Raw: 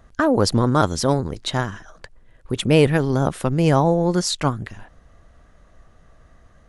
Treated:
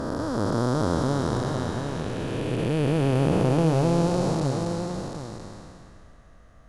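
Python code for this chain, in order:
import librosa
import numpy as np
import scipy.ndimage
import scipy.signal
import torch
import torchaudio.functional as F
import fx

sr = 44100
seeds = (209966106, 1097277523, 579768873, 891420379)

p1 = fx.spec_blur(x, sr, span_ms=1040.0)
y = p1 + fx.echo_single(p1, sr, ms=733, db=-7.0, dry=0)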